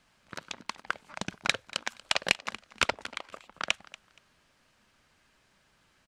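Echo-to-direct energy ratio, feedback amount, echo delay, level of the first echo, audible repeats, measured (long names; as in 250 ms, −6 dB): −19.5 dB, 23%, 236 ms, −19.5 dB, 2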